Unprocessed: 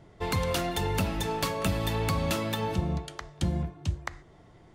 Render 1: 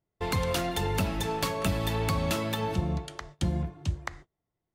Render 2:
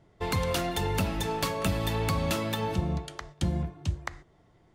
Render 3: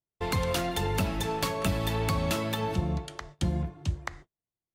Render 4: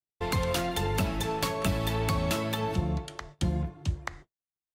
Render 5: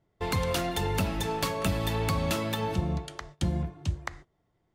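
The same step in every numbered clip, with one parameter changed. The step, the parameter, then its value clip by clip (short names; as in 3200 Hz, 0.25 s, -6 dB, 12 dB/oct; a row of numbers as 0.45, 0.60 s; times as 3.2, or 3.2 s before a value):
gate, range: -31, -7, -44, -57, -19 dB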